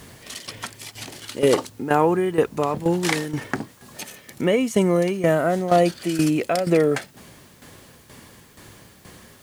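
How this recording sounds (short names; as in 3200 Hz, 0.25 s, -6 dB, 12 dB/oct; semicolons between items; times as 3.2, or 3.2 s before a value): tremolo saw down 2.1 Hz, depth 75%; a quantiser's noise floor 10-bit, dither triangular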